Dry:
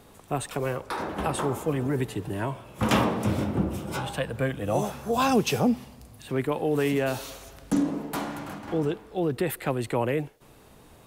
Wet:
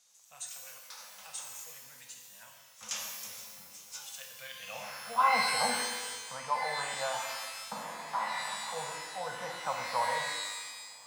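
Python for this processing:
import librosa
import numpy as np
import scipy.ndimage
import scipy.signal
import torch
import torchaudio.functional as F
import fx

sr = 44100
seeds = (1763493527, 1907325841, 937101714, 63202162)

y = scipy.signal.sosfilt(scipy.signal.ellip(3, 1.0, 40, [240.0, 490.0], 'bandstop', fs=sr, output='sos'), x)
y = fx.filter_sweep_bandpass(y, sr, from_hz=6300.0, to_hz=980.0, start_s=4.16, end_s=5.33, q=3.8)
y = fx.rev_shimmer(y, sr, seeds[0], rt60_s=1.2, semitones=12, shimmer_db=-2, drr_db=1.5)
y = F.gain(torch.from_numpy(y), 3.5).numpy()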